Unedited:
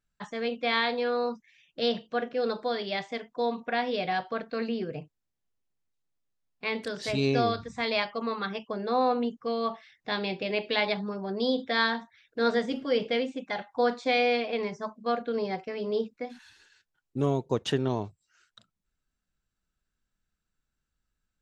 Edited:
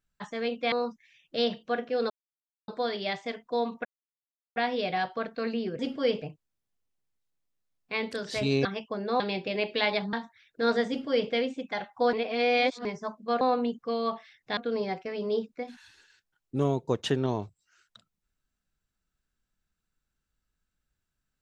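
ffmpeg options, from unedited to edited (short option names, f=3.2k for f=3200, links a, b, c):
-filter_complex "[0:a]asplit=13[a][b][c][d][e][f][g][h][i][j][k][l][m];[a]atrim=end=0.722[n];[b]atrim=start=1.158:end=2.54,asetpts=PTS-STARTPTS,afade=t=out:st=1.378:d=0.004:c=hsin,apad=pad_dur=0.58[o];[c]atrim=start=2.54:end=3.71,asetpts=PTS-STARTPTS,afade=t=in:d=0.004:c=hsin,afade=t=out:st=1.166:d=0.004:c=hsin,apad=pad_dur=0.71[p];[d]atrim=start=3.71:end=4.942,asetpts=PTS-STARTPTS,afade=t=in:d=0.004:c=hsin[q];[e]atrim=start=12.658:end=13.092[r];[f]atrim=start=4.938:end=7.372[s];[g]atrim=start=8.438:end=8.992[t];[h]atrim=start=10.148:end=11.082[u];[i]atrim=start=11.908:end=13.912[v];[j]atrim=start=13.908:end=14.632,asetpts=PTS-STARTPTS,areverse[w];[k]atrim=start=14.628:end=15.192[x];[l]atrim=start=8.988:end=10.152[y];[m]atrim=start=15.188[z];[o][p][q]concat=n=3:v=0:a=1[aa];[n][aa]acrossfade=d=0.004:c1=hsin:c2=hsin[ab];[ab][r]acrossfade=d=0.004:c1=hsin:c2=hsin[ac];[ac][s]acrossfade=d=0.004:c1=hsin:c2=hsin[ad];[ad][t]acrossfade=d=0.004:c1=hsin:c2=hsin[ae];[ae][u]acrossfade=d=0.004:c1=hsin:c2=hsin[af];[af][v]acrossfade=d=0.004:c1=hsin:c2=hsin[ag];[ag][w]acrossfade=d=0.004:c1=hsin:c2=hsin[ah];[ah][x]acrossfade=d=0.004:c1=hsin:c2=hsin[ai];[ai][y]acrossfade=d=0.004:c1=hsin:c2=hsin[aj];[aj][z]acrossfade=d=0.004:c1=hsin:c2=hsin"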